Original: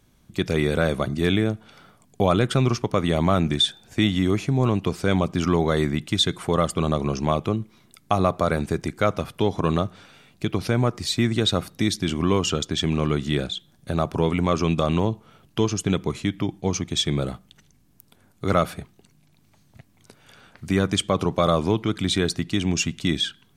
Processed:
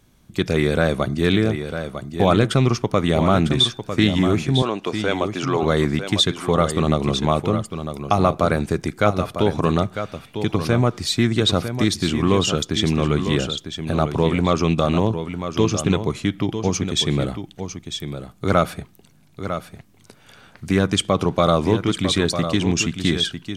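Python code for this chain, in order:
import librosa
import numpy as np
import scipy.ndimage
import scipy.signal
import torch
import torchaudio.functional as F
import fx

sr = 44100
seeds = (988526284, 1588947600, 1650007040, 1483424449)

y = fx.bandpass_edges(x, sr, low_hz=360.0, high_hz=7600.0, at=(4.62, 5.63))
y = y + 10.0 ** (-9.0 / 20.0) * np.pad(y, (int(951 * sr / 1000.0), 0))[:len(y)]
y = fx.doppler_dist(y, sr, depth_ms=0.11)
y = F.gain(torch.from_numpy(y), 3.0).numpy()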